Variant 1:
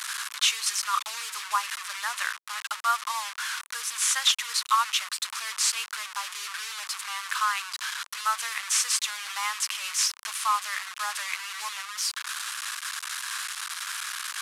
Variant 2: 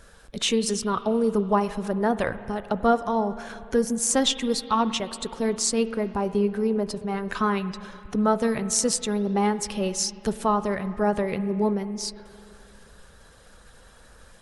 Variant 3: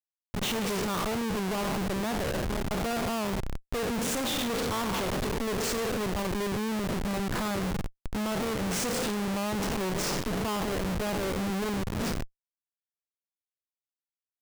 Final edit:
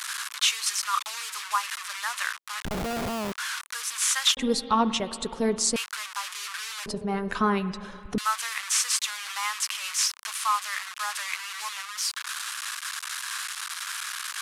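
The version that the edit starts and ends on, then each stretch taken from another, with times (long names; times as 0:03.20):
1
0:02.65–0:03.32: punch in from 3
0:04.37–0:05.76: punch in from 2
0:06.86–0:08.18: punch in from 2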